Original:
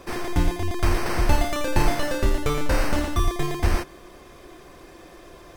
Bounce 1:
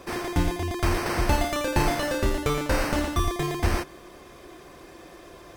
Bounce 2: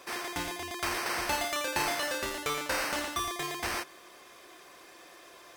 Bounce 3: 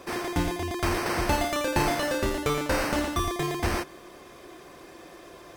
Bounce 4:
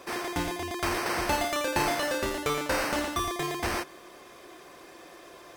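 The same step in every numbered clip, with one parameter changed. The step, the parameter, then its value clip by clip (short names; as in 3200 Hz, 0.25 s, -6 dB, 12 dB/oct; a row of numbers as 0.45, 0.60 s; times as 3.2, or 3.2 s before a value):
HPF, cutoff: 56, 1300, 160, 460 Hz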